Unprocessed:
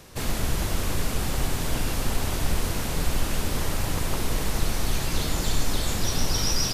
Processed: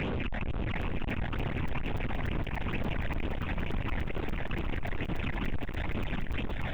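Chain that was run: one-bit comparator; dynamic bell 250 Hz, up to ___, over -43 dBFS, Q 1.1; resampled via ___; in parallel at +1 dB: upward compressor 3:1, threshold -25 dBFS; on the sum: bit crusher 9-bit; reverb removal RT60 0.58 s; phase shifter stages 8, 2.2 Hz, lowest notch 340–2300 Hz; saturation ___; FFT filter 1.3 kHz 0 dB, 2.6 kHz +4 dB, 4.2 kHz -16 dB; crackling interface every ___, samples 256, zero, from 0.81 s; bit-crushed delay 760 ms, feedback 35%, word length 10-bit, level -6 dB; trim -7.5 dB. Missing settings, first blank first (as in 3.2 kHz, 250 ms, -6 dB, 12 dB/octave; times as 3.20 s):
+5 dB, 8 kHz, -22.5 dBFS, 0.29 s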